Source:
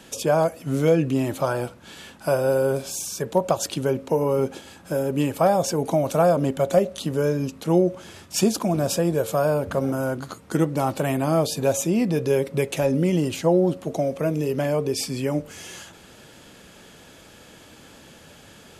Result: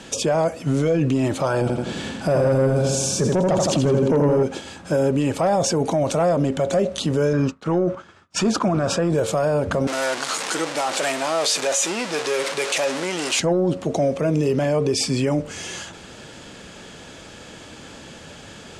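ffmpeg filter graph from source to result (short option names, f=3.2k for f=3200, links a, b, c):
-filter_complex "[0:a]asettb=1/sr,asplit=3[a][b][c];[a]atrim=end=1.614[d];[b]atrim=start=1.61:end=4.43,asetpts=PTS-STARTPTS,afade=t=in:d=0.004:c=qsin,afade=t=out:st=2.816:d=0.004:c=qsin,equalizer=f=190:w=0.4:g=10,aecho=1:1:83|166|249|332|415|498|581:0.562|0.292|0.152|0.0791|0.0411|0.0214|0.0111,atrim=end_sample=124362[e];[c]atrim=start=4.426[f];[d][e]acrossfade=d=0.004:c1=hsin:c2=qsin[g];[g][f]acrossfade=d=0.004:c1=qsin:c2=hsin,asettb=1/sr,asplit=3[h][i][j];[h]atrim=end=7.334[k];[i]atrim=start=7.33:end=9.1,asetpts=PTS-STARTPTS,afade=t=in:d=0.004:c=qsin,afade=t=out:st=1.766:d=0.004:c=qsin,lowpass=f=3.6k:p=1,equalizer=f=1.3k:t=o:w=0.73:g=11.5,agate=range=-33dB:threshold=-31dB:ratio=3:release=100:detection=peak[l];[j]atrim=start=9.096[m];[k][l]acrossfade=d=0.004:c1=hsin:c2=qsin[n];[n][m]acrossfade=d=0.004:c1=qsin:c2=hsin,asettb=1/sr,asplit=3[o][p][q];[o]atrim=end=9.874[r];[p]atrim=start=9.87:end=13.4,asetpts=PTS-STARTPTS,afade=t=in:d=0.004:c=qsin,afade=t=out:st=3.526:d=0.004:c=qsin,aeval=exprs='val(0)+0.5*0.0794*sgn(val(0))':c=same,highpass=690,equalizer=f=900:t=o:w=2.7:g=-3.5[s];[q]atrim=start=13.396[t];[r][s]acrossfade=d=0.004:c1=hsin:c2=qsin[u];[u][t]acrossfade=d=0.004:c1=qsin:c2=hsin,acontrast=85,lowpass=f=8.7k:w=0.5412,lowpass=f=8.7k:w=1.3066,alimiter=limit=-12.5dB:level=0:latency=1:release=26"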